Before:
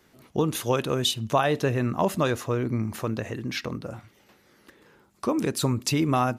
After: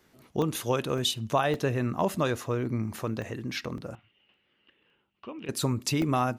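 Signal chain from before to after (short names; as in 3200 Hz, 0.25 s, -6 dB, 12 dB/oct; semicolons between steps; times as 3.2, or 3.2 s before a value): 3.95–5.49 ladder low-pass 3000 Hz, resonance 85%; crackling interface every 0.56 s, samples 64, zero, from 0.42; gain -3 dB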